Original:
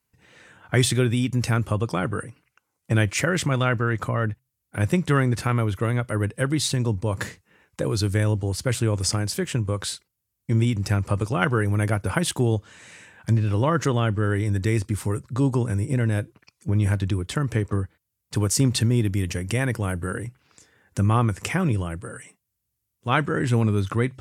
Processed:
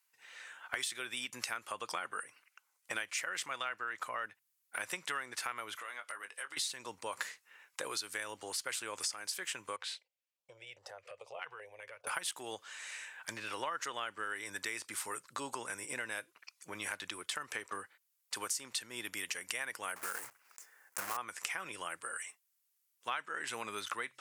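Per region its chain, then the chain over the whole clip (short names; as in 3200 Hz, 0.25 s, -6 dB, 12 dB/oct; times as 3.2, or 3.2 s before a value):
5.75–6.57 weighting filter A + compressor 3:1, threshold -41 dBFS + doubler 20 ms -8.5 dB
9.76–12.07 EQ curve 140 Hz 0 dB, 230 Hz -28 dB, 530 Hz +11 dB, 1300 Hz -8 dB, 2500 Hz -1 dB, 4100 Hz -9 dB, 11000 Hz -21 dB + compressor 3:1, threshold -35 dBFS + stepped notch 4.9 Hz 590–2400 Hz
19.96–21.18 block floating point 3-bit + bell 3600 Hz -13.5 dB 1 oct
whole clip: HPF 1100 Hz 12 dB/oct; compressor 6:1, threshold -37 dBFS; gain +1.5 dB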